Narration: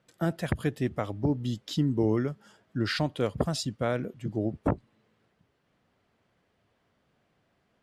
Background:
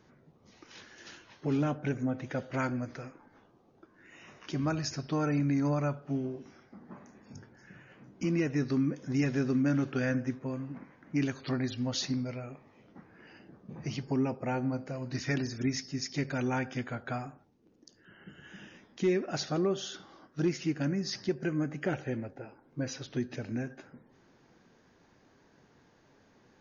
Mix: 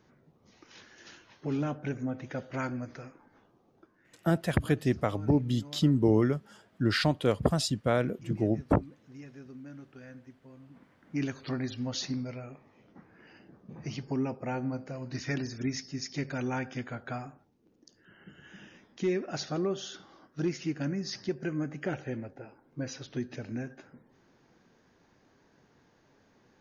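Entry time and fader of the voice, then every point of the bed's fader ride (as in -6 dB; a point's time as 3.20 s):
4.05 s, +2.0 dB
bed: 3.83 s -2 dB
4.33 s -18.5 dB
10.43 s -18.5 dB
11.22 s -1.5 dB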